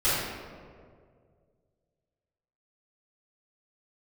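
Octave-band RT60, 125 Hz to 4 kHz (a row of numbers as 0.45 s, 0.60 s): 2.8 s, 2.2 s, 2.4 s, 1.8 s, 1.4 s, 0.95 s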